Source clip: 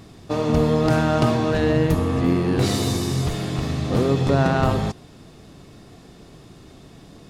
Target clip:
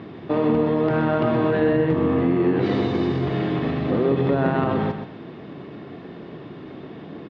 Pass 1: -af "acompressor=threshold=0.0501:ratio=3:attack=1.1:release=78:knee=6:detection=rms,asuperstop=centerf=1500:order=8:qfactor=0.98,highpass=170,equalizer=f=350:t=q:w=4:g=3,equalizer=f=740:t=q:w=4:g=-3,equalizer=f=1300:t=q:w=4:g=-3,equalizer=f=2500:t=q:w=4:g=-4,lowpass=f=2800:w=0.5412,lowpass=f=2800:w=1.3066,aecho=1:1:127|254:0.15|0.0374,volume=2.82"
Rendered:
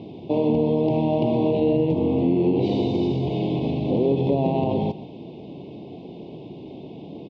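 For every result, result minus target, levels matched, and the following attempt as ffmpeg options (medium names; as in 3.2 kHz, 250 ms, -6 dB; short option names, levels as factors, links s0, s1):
2 kHz band -12.5 dB; echo-to-direct -8 dB
-af "acompressor=threshold=0.0501:ratio=3:attack=1.1:release=78:knee=6:detection=rms,highpass=170,equalizer=f=350:t=q:w=4:g=3,equalizer=f=740:t=q:w=4:g=-3,equalizer=f=1300:t=q:w=4:g=-3,equalizer=f=2500:t=q:w=4:g=-4,lowpass=f=2800:w=0.5412,lowpass=f=2800:w=1.3066,aecho=1:1:127|254:0.15|0.0374,volume=2.82"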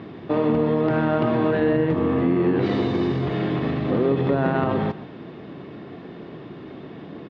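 echo-to-direct -8 dB
-af "acompressor=threshold=0.0501:ratio=3:attack=1.1:release=78:knee=6:detection=rms,highpass=170,equalizer=f=350:t=q:w=4:g=3,equalizer=f=740:t=q:w=4:g=-3,equalizer=f=1300:t=q:w=4:g=-3,equalizer=f=2500:t=q:w=4:g=-4,lowpass=f=2800:w=0.5412,lowpass=f=2800:w=1.3066,aecho=1:1:127|254|381:0.376|0.094|0.0235,volume=2.82"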